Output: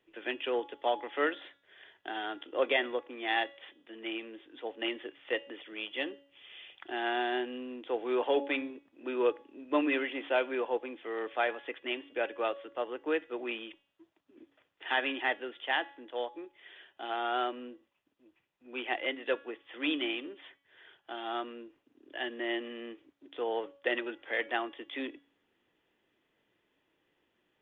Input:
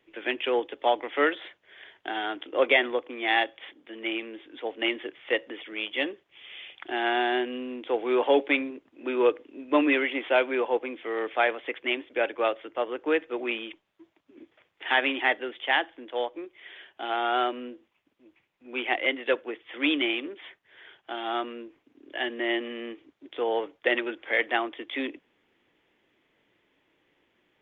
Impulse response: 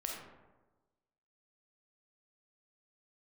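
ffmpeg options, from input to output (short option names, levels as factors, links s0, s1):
-af "bandreject=f=2200:w=9.9,bandreject=f=280.8:t=h:w=4,bandreject=f=561.6:t=h:w=4,bandreject=f=842.4:t=h:w=4,bandreject=f=1123.2:t=h:w=4,bandreject=f=1404:t=h:w=4,bandreject=f=1684.8:t=h:w=4,bandreject=f=1965.6:t=h:w=4,bandreject=f=2246.4:t=h:w=4,bandreject=f=2527.2:t=h:w=4,bandreject=f=2808:t=h:w=4,bandreject=f=3088.8:t=h:w=4,bandreject=f=3369.6:t=h:w=4,bandreject=f=3650.4:t=h:w=4,bandreject=f=3931.2:t=h:w=4,bandreject=f=4212:t=h:w=4,bandreject=f=4492.8:t=h:w=4,bandreject=f=4773.6:t=h:w=4,bandreject=f=5054.4:t=h:w=4,bandreject=f=5335.2:t=h:w=4,bandreject=f=5616:t=h:w=4,bandreject=f=5896.8:t=h:w=4,bandreject=f=6177.6:t=h:w=4,bandreject=f=6458.4:t=h:w=4,bandreject=f=6739.2:t=h:w=4,bandreject=f=7020:t=h:w=4,bandreject=f=7300.8:t=h:w=4,bandreject=f=7581.6:t=h:w=4,bandreject=f=7862.4:t=h:w=4,bandreject=f=8143.2:t=h:w=4,bandreject=f=8424:t=h:w=4,bandreject=f=8704.8:t=h:w=4,bandreject=f=8985.6:t=h:w=4,bandreject=f=9266.4:t=h:w=4,bandreject=f=9547.2:t=h:w=4,bandreject=f=9828:t=h:w=4,bandreject=f=10108.8:t=h:w=4,volume=0.501"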